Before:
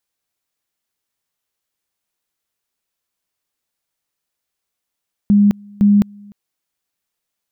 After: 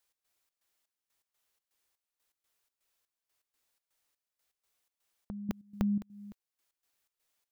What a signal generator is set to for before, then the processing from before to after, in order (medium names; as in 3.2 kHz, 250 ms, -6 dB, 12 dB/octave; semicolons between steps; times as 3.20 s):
two-level tone 204 Hz -7.5 dBFS, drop 28.5 dB, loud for 0.21 s, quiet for 0.30 s, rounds 2
peaking EQ 160 Hz -9 dB 1.3 oct; compression 6:1, threshold -29 dBFS; trance gate "x.xx.xx.." 123 bpm -12 dB